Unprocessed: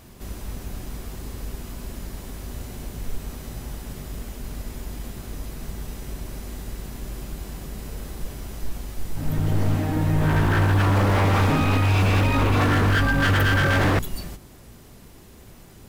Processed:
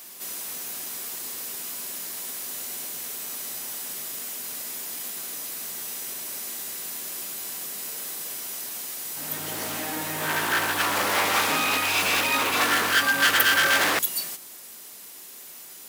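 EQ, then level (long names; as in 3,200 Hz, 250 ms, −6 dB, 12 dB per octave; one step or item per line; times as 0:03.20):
Bessel high-pass filter 270 Hz, order 2
spectral tilt +4 dB per octave
0.0 dB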